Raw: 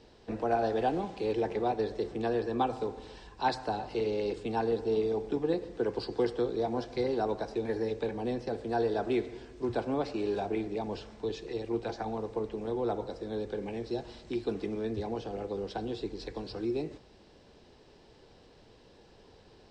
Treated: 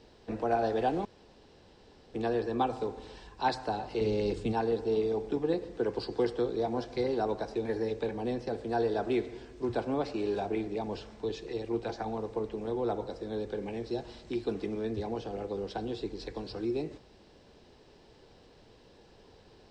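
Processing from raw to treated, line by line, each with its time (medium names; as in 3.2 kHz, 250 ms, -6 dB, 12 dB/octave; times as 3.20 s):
1.05–2.14 s: room tone
4.01–4.53 s: tone controls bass +9 dB, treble +4 dB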